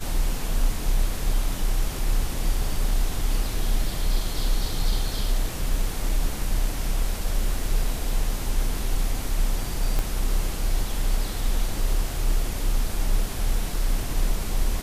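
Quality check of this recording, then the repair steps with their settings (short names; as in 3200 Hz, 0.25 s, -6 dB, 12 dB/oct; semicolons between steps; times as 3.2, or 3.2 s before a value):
9.99 pop -13 dBFS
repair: de-click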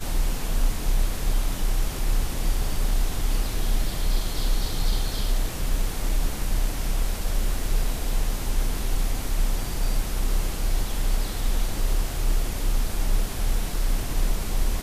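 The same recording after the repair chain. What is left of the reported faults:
9.99 pop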